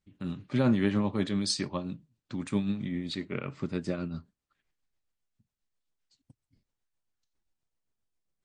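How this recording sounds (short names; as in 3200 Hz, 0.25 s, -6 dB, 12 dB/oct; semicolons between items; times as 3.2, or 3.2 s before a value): tremolo triangle 7.5 Hz, depth 50%; MP3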